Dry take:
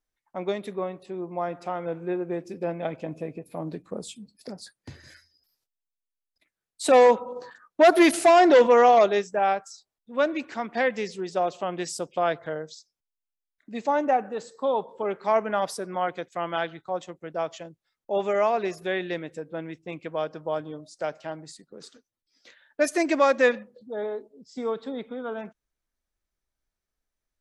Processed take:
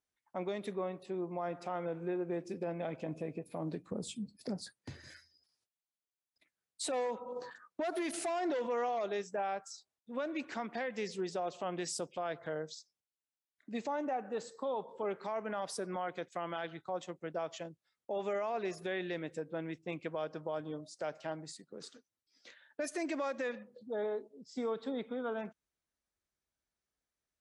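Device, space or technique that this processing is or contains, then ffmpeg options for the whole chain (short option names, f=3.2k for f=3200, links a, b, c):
podcast mastering chain: -filter_complex "[0:a]asettb=1/sr,asplit=3[a][b][c];[a]atrim=end=3.904[d];[b]atrim=start=3.9:end=4.75,asetpts=PTS-STARTPTS,afade=t=in:d=0.004:c=qsin,afade=t=out:st=0.846:d=0.004:c=qsin,lowshelf=f=370:g=9.5[e];[c]atrim=start=4.746[f];[d][e]acrossfade=d=0.004:c1=hsin:c2=qsin[g];[g][f]acrossfade=d=0.004:c1=qsin:c2=hsin,highpass=72,acompressor=threshold=-29dB:ratio=2.5,alimiter=level_in=0.5dB:limit=-24dB:level=0:latency=1:release=30,volume=-0.5dB,volume=-3dB" -ar 24000 -c:a libmp3lame -b:a 96k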